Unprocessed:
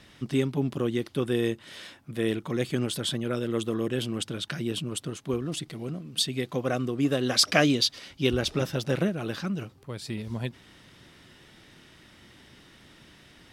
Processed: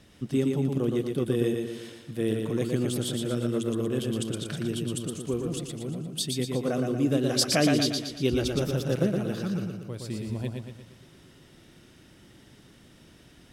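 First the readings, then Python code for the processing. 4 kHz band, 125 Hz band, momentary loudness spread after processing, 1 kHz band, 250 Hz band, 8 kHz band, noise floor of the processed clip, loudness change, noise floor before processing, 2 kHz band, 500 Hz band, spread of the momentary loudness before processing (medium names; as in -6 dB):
-3.5 dB, +2.0 dB, 11 LU, -2.5 dB, +1.5 dB, +0.5 dB, -55 dBFS, 0.0 dB, -55 dBFS, -5.0 dB, +1.0 dB, 12 LU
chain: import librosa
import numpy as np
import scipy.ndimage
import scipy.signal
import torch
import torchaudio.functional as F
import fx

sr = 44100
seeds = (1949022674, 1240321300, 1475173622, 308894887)

p1 = fx.graphic_eq(x, sr, hz=(1000, 2000, 4000), db=(-5, -6, -5))
y = p1 + fx.echo_feedback(p1, sr, ms=117, feedback_pct=50, wet_db=-4, dry=0)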